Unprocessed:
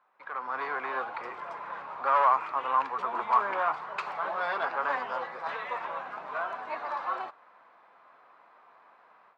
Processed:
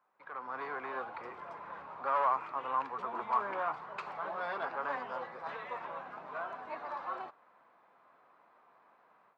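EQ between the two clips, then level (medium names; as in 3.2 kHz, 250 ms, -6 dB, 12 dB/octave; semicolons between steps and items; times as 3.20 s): bass shelf 440 Hz +9.5 dB; -8.5 dB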